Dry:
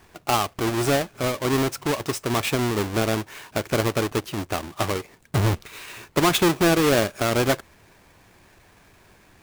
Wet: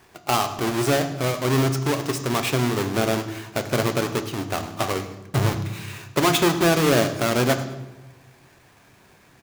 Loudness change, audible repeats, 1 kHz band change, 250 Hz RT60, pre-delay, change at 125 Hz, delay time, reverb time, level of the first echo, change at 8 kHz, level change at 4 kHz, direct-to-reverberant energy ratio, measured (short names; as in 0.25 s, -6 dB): +0.5 dB, 1, +1.0 dB, 1.5 s, 3 ms, +2.0 dB, 0.104 s, 1.1 s, -18.0 dB, +0.5 dB, +0.5 dB, 8.0 dB